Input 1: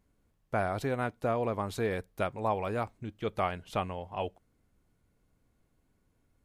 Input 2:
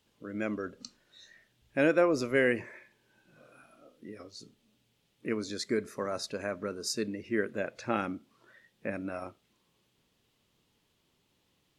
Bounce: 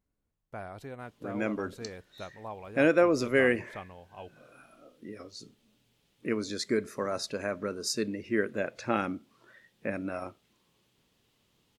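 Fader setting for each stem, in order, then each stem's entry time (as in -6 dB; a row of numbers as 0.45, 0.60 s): -11.0, +2.0 dB; 0.00, 1.00 s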